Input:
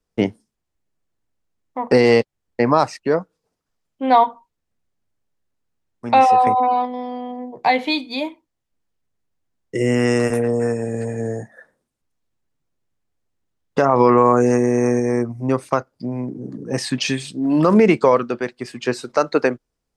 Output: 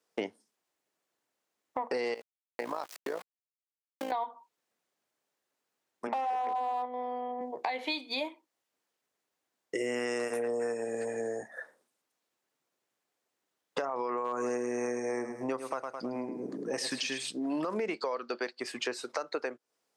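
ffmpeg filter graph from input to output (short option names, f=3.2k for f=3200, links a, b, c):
-filter_complex "[0:a]asettb=1/sr,asplit=3[a][b][c];[a]atrim=end=2.144[d];[b]atrim=start=2.14:end=4.12,asetpts=PTS-STARTPTS,afade=t=in:d=0.004:c=qsin,afade=t=out:st=1.976:d=0.004:c=qsin,aeval=exprs='val(0)*gte(abs(val(0)),0.0376)':c=same,acompressor=threshold=-27dB:ratio=2.5:attack=3.2:release=140:knee=1:detection=peak,tremolo=f=56:d=0.75[e];[c]atrim=start=4.116[f];[d][e]acrossfade=d=0.004:c1=hsin:c2=qsin[g];[g][f]acrossfade=d=0.004:c1=qsin:c2=hsin,asettb=1/sr,asplit=3[h][i][j];[h]atrim=end=6.074[k];[i]atrim=start=6.07:end=7.41,asetpts=PTS-STARTPTS,afade=t=in:d=0.004:c=qsin,afade=t=out:st=1.336:d=0.004:c=qsin,highpass=210,lowpass=2k,acompressor=threshold=-15dB:ratio=3:attack=3.2:release=140:knee=1:detection=peak,aeval=exprs='clip(val(0),-1,0.188)':c=same[l];[j]atrim=start=7.406[m];[k][l]acrossfade=d=0.004:c1=hsin:c2=qsin[n];[n][m]acrossfade=d=0.004:c1=qsin:c2=hsin,asettb=1/sr,asplit=3[o][p][q];[o]atrim=end=14.144[r];[p]atrim=start=14.14:end=17.18,asetpts=PTS-STARTPTS,afade=t=in:d=0.004:c=qsin,afade=t=out:st=3.036:d=0.004:c=qsin,aecho=1:1:106|212|318|424:0.299|0.104|0.0366|0.0128,atrim=end_sample=134064,asoftclip=type=hard:threshold=-3.5dB[s];[q]atrim=start=17.176[t];[r][s]acrossfade=d=0.004:c1=hsin:c2=qsin[u];[u][t]acrossfade=d=0.004:c1=qsin:c2=hsin,asettb=1/sr,asplit=3[v][w][x];[v]atrim=end=17.944[y];[w]atrim=start=17.94:end=18.6,asetpts=PTS-STARTPTS,afade=t=in:d=0.004:c=qsin,afade=t=out:st=0.656:d=0.004:c=qsin,highpass=160,lowpass=7.3k,equalizer=f=4.5k:t=o:w=0.24:g=15[z];[x]atrim=start=18.596[aa];[y][z]acrossfade=d=0.004:c1=hsin:c2=qsin[ab];[ab][aa]acrossfade=d=0.004:c1=qsin:c2=hsin,highpass=420,alimiter=limit=-14.5dB:level=0:latency=1:release=254,acompressor=threshold=-38dB:ratio=3,volume=3.5dB"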